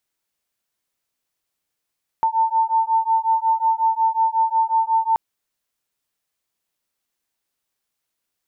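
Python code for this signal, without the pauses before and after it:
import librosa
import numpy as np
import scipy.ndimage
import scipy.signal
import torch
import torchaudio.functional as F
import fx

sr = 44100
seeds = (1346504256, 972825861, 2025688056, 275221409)

y = fx.two_tone_beats(sr, length_s=2.93, hz=894.0, beat_hz=5.5, level_db=-19.0)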